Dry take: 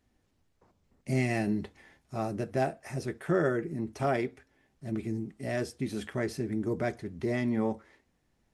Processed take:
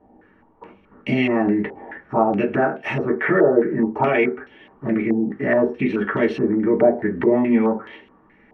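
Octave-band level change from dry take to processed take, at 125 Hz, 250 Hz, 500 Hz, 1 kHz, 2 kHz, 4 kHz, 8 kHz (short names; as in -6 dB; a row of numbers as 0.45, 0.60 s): +4.0 dB, +13.0 dB, +13.5 dB, +12.5 dB, +13.0 dB, n/a, under -10 dB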